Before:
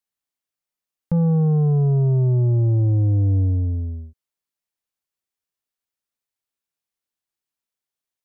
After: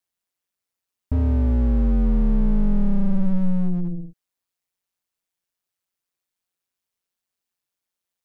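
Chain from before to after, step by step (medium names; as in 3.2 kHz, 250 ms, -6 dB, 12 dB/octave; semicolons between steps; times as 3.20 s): ring modulator 91 Hz; slew-rate limiter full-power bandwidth 8.7 Hz; trim +5.5 dB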